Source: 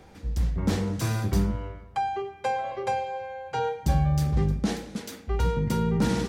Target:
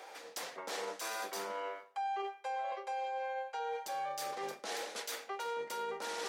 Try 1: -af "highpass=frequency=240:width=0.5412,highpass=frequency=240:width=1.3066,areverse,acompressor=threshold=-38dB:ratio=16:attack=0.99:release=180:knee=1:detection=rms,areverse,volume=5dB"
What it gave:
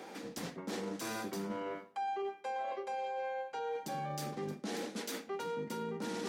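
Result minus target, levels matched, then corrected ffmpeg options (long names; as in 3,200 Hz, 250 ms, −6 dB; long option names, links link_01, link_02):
250 Hz band +14.5 dB
-af "highpass=frequency=520:width=0.5412,highpass=frequency=520:width=1.3066,areverse,acompressor=threshold=-38dB:ratio=16:attack=0.99:release=180:knee=1:detection=rms,areverse,volume=5dB"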